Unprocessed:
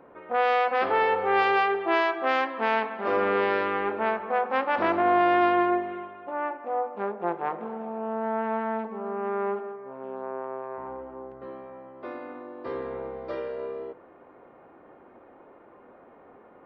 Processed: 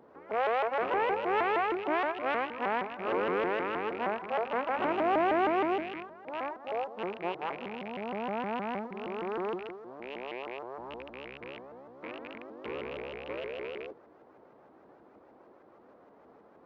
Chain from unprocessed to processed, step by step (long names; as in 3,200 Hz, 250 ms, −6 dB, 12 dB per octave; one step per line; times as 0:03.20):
loose part that buzzes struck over −46 dBFS, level −22 dBFS
high-shelf EQ 4,700 Hz −6.5 dB
log-companded quantiser 6 bits
high-pass filter 45 Hz
high-frequency loss of the air 280 metres
mains-hum notches 50/100 Hz
pitch modulation by a square or saw wave saw up 6.4 Hz, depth 250 cents
level −4.5 dB